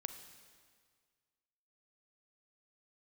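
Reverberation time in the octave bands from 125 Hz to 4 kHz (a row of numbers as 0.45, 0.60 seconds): 2.0, 1.8, 1.8, 1.8, 1.8, 1.7 seconds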